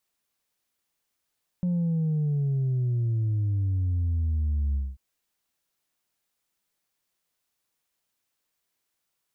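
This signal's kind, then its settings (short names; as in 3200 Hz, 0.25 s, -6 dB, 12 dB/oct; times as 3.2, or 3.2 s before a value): sub drop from 180 Hz, over 3.34 s, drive 1.5 dB, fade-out 0.22 s, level -23 dB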